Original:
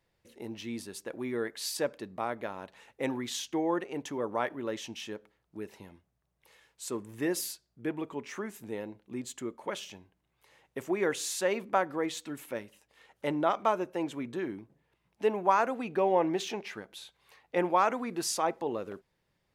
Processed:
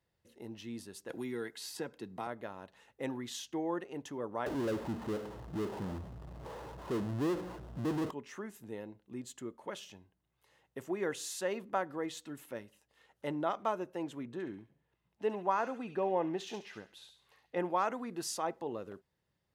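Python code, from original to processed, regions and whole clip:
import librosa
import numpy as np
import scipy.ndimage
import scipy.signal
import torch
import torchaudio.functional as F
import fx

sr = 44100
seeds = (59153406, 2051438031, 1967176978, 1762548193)

y = fx.chain(x, sr, fx.notch_comb(f0_hz=590.0),
    fx.band_squash(depth_pct=70), at=(1.09, 2.27))
y = fx.chain(y, sr, fx.steep_lowpass(hz=1100.0, slope=36),
    fx.power_curve(exponent=0.35), at=(4.46, 8.11))
y = fx.chain(y, sr, fx.high_shelf(hz=5600.0, db=-7.5),
    fx.echo_wet_highpass(ms=69, feedback_pct=38, hz=2700.0, wet_db=-4.5), at=(14.25, 17.6))
y = scipy.signal.sosfilt(scipy.signal.butter(2, 56.0, 'highpass', fs=sr, output='sos'), y)
y = fx.low_shelf(y, sr, hz=130.0, db=6.5)
y = fx.notch(y, sr, hz=2300.0, q=11.0)
y = y * librosa.db_to_amplitude(-6.5)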